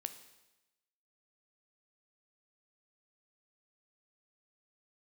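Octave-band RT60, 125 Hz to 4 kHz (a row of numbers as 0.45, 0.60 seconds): 1.0, 1.0, 1.0, 1.0, 1.0, 1.0 seconds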